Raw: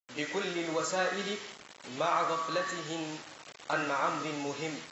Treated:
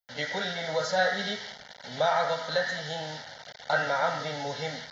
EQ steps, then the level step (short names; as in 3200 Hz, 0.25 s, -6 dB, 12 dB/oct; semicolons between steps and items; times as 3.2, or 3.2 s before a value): fixed phaser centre 1700 Hz, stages 8; +7.5 dB